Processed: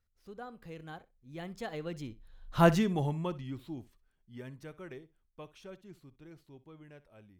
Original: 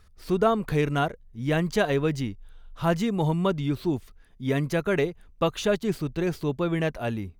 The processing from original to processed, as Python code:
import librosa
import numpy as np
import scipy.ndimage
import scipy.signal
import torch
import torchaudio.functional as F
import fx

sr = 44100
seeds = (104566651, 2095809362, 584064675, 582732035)

y = fx.doppler_pass(x, sr, speed_mps=30, closest_m=4.1, pass_at_s=2.65)
y = fx.room_flutter(y, sr, wall_m=10.8, rt60_s=0.21)
y = y * 10.0 ** (1.5 / 20.0)